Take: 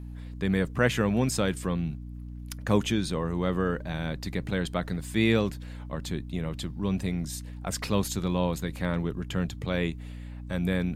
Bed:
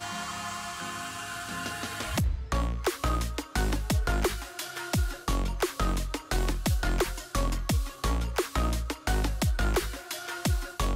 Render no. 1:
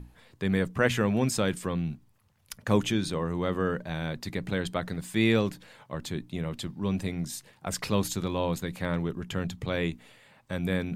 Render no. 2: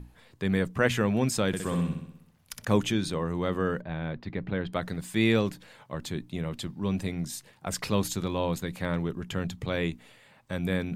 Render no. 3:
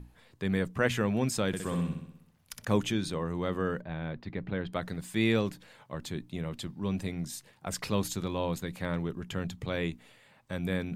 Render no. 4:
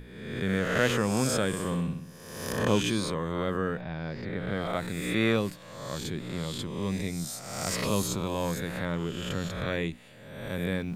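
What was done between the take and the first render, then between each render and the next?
notches 60/120/180/240/300 Hz
1.47–2.65 flutter echo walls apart 10.8 m, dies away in 0.74 s; 3.81–4.73 air absorption 340 m
gain -3 dB
spectral swells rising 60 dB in 1.14 s

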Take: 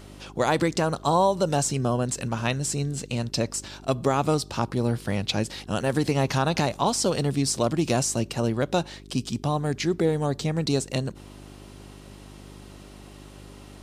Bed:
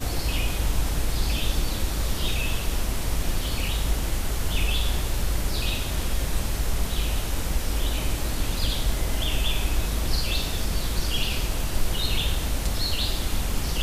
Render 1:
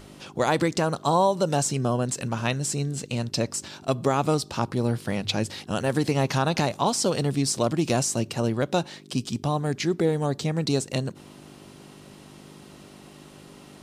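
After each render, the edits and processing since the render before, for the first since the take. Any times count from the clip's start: de-hum 50 Hz, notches 2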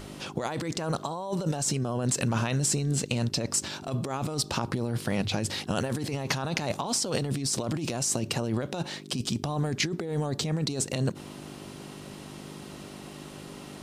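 negative-ratio compressor -29 dBFS, ratio -1; ending taper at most 590 dB/s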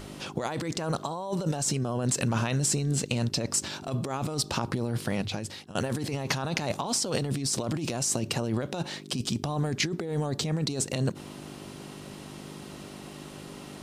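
5.03–5.75 fade out, to -18 dB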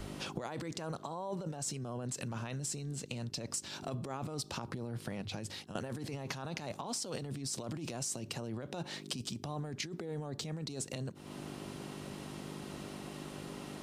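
compressor 16:1, threshold -36 dBFS, peak gain reduction 14.5 dB; three-band expander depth 40%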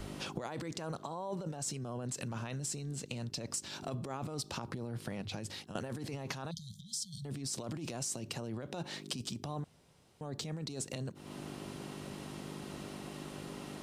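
6.51–7.25 brick-wall FIR band-stop 210–3100 Hz; 9.64–10.21 room tone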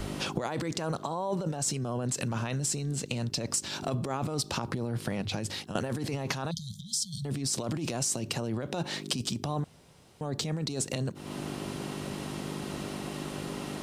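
gain +8 dB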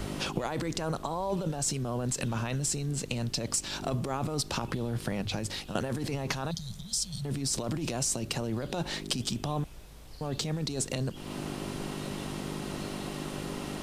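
add bed -25 dB

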